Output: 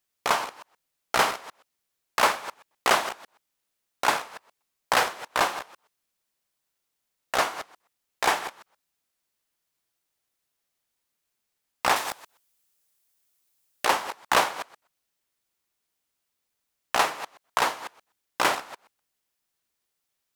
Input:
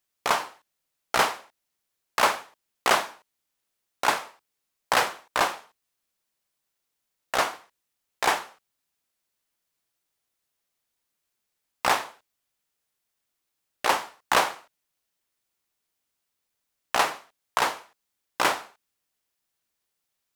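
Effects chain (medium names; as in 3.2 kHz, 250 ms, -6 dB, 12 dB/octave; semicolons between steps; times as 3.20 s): chunks repeated in reverse 125 ms, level -13 dB; 11.96–13.85 s: treble shelf 4.8 kHz +10.5 dB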